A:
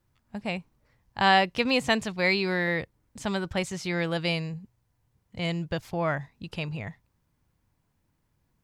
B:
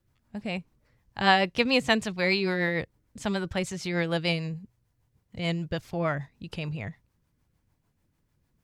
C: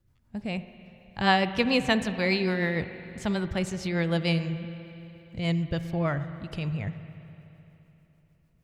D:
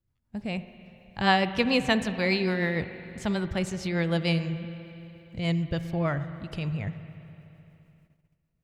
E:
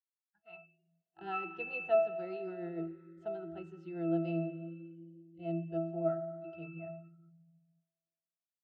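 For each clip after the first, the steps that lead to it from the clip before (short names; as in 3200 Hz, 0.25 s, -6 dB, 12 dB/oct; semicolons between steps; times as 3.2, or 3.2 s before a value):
rotary speaker horn 6.7 Hz; gain +2 dB
low shelf 210 Hz +7.5 dB; spring tank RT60 3.3 s, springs 42/59 ms, chirp 45 ms, DRR 11 dB; gain -2 dB
gate -60 dBFS, range -11 dB
octave resonator E, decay 0.53 s; spectral noise reduction 28 dB; high-pass sweep 1700 Hz -> 460 Hz, 0.27–1; gain +8.5 dB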